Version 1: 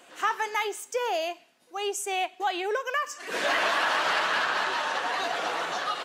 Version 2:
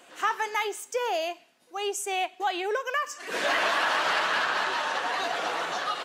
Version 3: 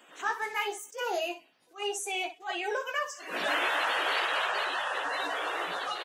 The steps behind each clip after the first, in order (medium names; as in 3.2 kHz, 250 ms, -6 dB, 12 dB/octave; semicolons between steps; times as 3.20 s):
no audible change
coarse spectral quantiser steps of 30 dB; early reflections 17 ms -5 dB, 61 ms -10 dB; attacks held to a fixed rise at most 250 dB/s; trim -4 dB